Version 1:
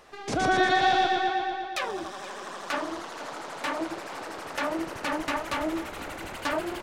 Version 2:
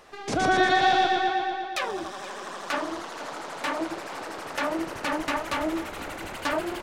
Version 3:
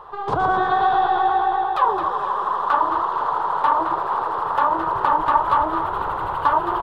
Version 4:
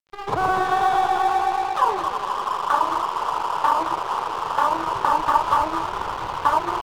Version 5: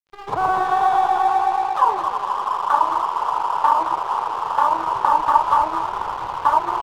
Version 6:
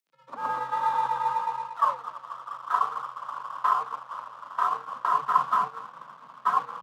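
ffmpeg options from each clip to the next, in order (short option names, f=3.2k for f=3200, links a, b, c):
-af "bandreject=f=60:t=h:w=6,bandreject=f=120:t=h:w=6,volume=1.5dB"
-filter_complex "[0:a]acompressor=threshold=-26dB:ratio=4,firequalizer=gain_entry='entry(140,0);entry(240,-15);entry(420,0);entry(620,-5);entry(970,13);entry(1500,-3);entry(2200,-19);entry(3300,-9);entry(5900,-27);entry(14000,-18)':delay=0.05:min_phase=1,asplit=2[a][b];[b]asplit=4[c][d][e][f];[c]adelay=217,afreqshift=55,volume=-9.5dB[g];[d]adelay=434,afreqshift=110,volume=-18.1dB[h];[e]adelay=651,afreqshift=165,volume=-26.8dB[i];[f]adelay=868,afreqshift=220,volume=-35.4dB[j];[g][h][i][j]amix=inputs=4:normalize=0[k];[a][k]amix=inputs=2:normalize=0,volume=8.5dB"
-af "aeval=exprs='sgn(val(0))*max(abs(val(0))-0.0251,0)':c=same"
-af "adynamicequalizer=threshold=0.0251:dfrequency=900:dqfactor=1.4:tfrequency=900:tqfactor=1.4:attack=5:release=100:ratio=0.375:range=4:mode=boostabove:tftype=bell,volume=-4dB"
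-af "acompressor=mode=upward:threshold=-19dB:ratio=2.5,agate=range=-33dB:threshold=-13dB:ratio=3:detection=peak,afreqshift=130,volume=-6dB"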